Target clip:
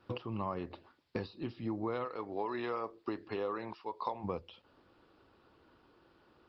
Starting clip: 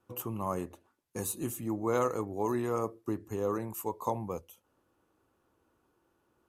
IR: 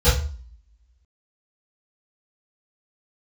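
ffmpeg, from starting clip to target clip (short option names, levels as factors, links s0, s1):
-filter_complex "[0:a]asplit=3[s0][s1][s2];[s0]afade=t=out:st=2.04:d=0.02[s3];[s1]highpass=f=650:p=1,afade=t=in:st=2.04:d=0.02,afade=t=out:st=4.23:d=0.02[s4];[s2]afade=t=in:st=4.23:d=0.02[s5];[s3][s4][s5]amix=inputs=3:normalize=0,highshelf=f=2800:g=10.5,acompressor=threshold=0.00891:ratio=10,aresample=11025,aresample=44100,volume=2.66" -ar 48000 -c:a libopus -b:a 20k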